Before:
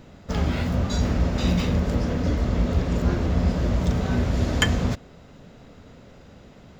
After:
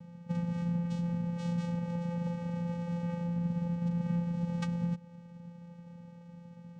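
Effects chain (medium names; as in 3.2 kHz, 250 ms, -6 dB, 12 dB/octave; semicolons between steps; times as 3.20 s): 1.35–3.22 s: bass shelf 190 Hz -12 dB; compression 2.5:1, threshold -29 dBFS, peak gain reduction 9.5 dB; vocoder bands 4, square 172 Hz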